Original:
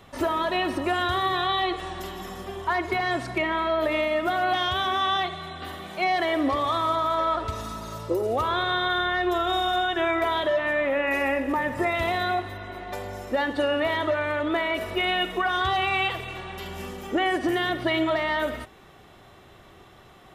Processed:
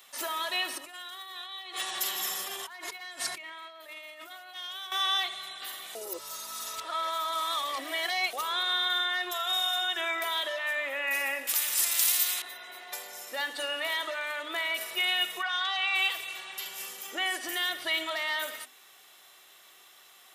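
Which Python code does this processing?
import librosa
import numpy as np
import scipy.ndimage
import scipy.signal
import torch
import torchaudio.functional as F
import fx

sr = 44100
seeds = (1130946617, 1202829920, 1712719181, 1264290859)

y = fx.over_compress(x, sr, threshold_db=-35.0, ratio=-1.0, at=(0.78, 4.92))
y = fx.brickwall_highpass(y, sr, low_hz=370.0, at=(9.31, 9.82))
y = fx.spectral_comp(y, sr, ratio=4.0, at=(11.47, 12.42))
y = fx.quant_float(y, sr, bits=8, at=(13.25, 13.74))
y = fx.bandpass_edges(y, sr, low_hz=580.0, high_hz=4600.0, at=(15.42, 15.94), fade=0.02)
y = fx.edit(y, sr, fx.reverse_span(start_s=5.95, length_s=2.38), tone=tone)
y = fx.highpass(y, sr, hz=180.0, slope=6)
y = np.diff(y, prepend=0.0)
y = fx.hum_notches(y, sr, base_hz=50, count=6)
y = F.gain(torch.from_numpy(y), 8.5).numpy()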